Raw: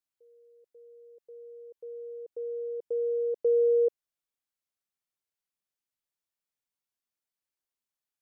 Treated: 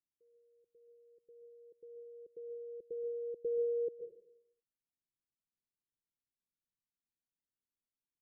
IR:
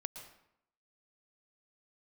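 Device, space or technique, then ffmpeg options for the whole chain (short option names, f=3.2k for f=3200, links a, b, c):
next room: -filter_complex "[0:a]lowpass=f=350:w=0.5412,lowpass=f=350:w=1.3066[a];[1:a]atrim=start_sample=2205[b];[a][b]afir=irnorm=-1:irlink=0,volume=3dB"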